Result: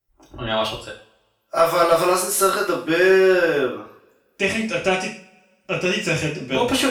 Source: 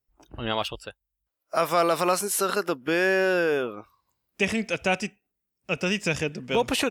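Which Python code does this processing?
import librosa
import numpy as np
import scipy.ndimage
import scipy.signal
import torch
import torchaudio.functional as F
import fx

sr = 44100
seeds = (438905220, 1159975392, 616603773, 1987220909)

y = fx.rev_double_slope(x, sr, seeds[0], early_s=0.42, late_s=1.6, knee_db=-26, drr_db=-4.0)
y = fx.cheby_harmonics(y, sr, harmonics=(2,), levels_db=(-19,), full_scale_db=-2.0)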